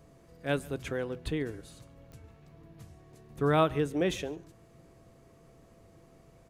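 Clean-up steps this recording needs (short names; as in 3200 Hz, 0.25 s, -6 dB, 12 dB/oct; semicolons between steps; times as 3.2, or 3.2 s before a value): de-click; notch 670 Hz, Q 30; inverse comb 0.14 s -23.5 dB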